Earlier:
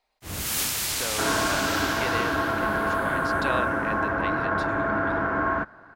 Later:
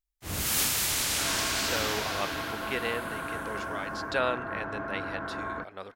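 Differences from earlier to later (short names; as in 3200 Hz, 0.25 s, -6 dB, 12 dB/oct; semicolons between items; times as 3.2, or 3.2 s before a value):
speech: entry +0.70 s; second sound -10.5 dB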